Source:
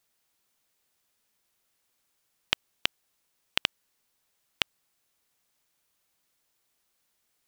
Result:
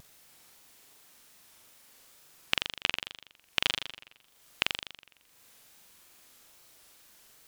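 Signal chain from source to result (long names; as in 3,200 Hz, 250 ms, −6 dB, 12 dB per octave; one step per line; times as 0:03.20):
upward compression, threshold −44 dBFS
flutter between parallel walls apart 7.2 metres, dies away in 0.85 s
tape wow and flutter 130 cents
level −2 dB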